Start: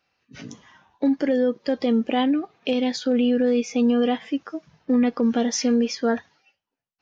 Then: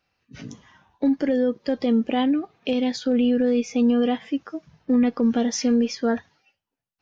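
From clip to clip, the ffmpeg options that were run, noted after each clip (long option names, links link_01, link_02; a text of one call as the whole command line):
ffmpeg -i in.wav -af "lowshelf=frequency=140:gain=10,volume=-2dB" out.wav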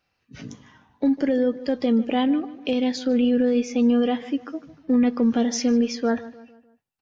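ffmpeg -i in.wav -filter_complex "[0:a]asplit=2[link_01][link_02];[link_02]adelay=151,lowpass=frequency=2700:poles=1,volume=-16.5dB,asplit=2[link_03][link_04];[link_04]adelay=151,lowpass=frequency=2700:poles=1,volume=0.46,asplit=2[link_05][link_06];[link_06]adelay=151,lowpass=frequency=2700:poles=1,volume=0.46,asplit=2[link_07][link_08];[link_08]adelay=151,lowpass=frequency=2700:poles=1,volume=0.46[link_09];[link_01][link_03][link_05][link_07][link_09]amix=inputs=5:normalize=0" out.wav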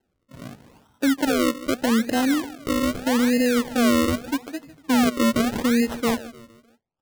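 ffmpeg -i in.wav -af "acrusher=samples=37:mix=1:aa=0.000001:lfo=1:lforange=37:lforate=0.81" out.wav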